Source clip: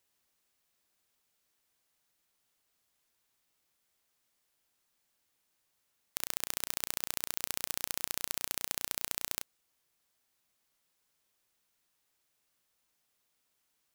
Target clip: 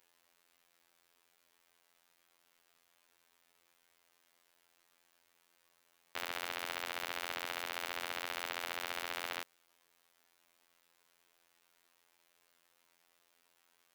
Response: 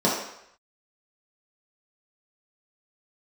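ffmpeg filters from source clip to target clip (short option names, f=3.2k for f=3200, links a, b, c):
-af "bass=f=250:g=-11,treble=f=4k:g=-8,afftfilt=real='hypot(re,im)*cos(PI*b)':imag='0':win_size=2048:overlap=0.75,asoftclip=type=tanh:threshold=-31.5dB,volume=13.5dB"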